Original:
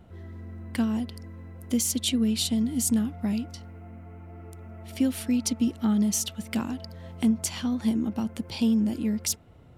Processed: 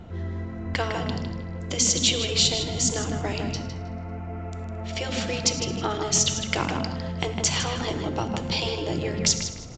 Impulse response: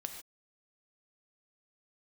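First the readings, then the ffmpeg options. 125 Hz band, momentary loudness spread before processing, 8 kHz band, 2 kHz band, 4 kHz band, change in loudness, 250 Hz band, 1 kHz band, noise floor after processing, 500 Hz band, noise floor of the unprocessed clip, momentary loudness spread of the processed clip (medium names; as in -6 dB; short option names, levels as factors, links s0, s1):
+6.5 dB, 19 LU, +6.5 dB, +11.0 dB, +9.5 dB, +1.5 dB, -6.5 dB, +11.0 dB, -35 dBFS, +9.5 dB, -50 dBFS, 14 LU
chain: -filter_complex "[0:a]asplit=6[s0][s1][s2][s3][s4][s5];[s1]adelay=110,afreqshift=-37,volume=0.106[s6];[s2]adelay=220,afreqshift=-74,volume=0.0617[s7];[s3]adelay=330,afreqshift=-111,volume=0.0355[s8];[s4]adelay=440,afreqshift=-148,volume=0.0207[s9];[s5]adelay=550,afreqshift=-185,volume=0.012[s10];[s0][s6][s7][s8][s9][s10]amix=inputs=6:normalize=0,asplit=2[s11][s12];[1:a]atrim=start_sample=2205,afade=t=out:st=0.15:d=0.01,atrim=end_sample=7056[s13];[s12][s13]afir=irnorm=-1:irlink=0,volume=1.41[s14];[s11][s14]amix=inputs=2:normalize=0,afftfilt=real='re*lt(hypot(re,im),0.355)':imag='im*lt(hypot(re,im),0.355)':win_size=1024:overlap=0.75,asplit=2[s15][s16];[s16]adelay=156,lowpass=f=3300:p=1,volume=0.562,asplit=2[s17][s18];[s18]adelay=156,lowpass=f=3300:p=1,volume=0.32,asplit=2[s19][s20];[s20]adelay=156,lowpass=f=3300:p=1,volume=0.32,asplit=2[s21][s22];[s22]adelay=156,lowpass=f=3300:p=1,volume=0.32[s23];[s17][s19][s21][s23]amix=inputs=4:normalize=0[s24];[s15][s24]amix=inputs=2:normalize=0,aresample=16000,aresample=44100,volume=1.5"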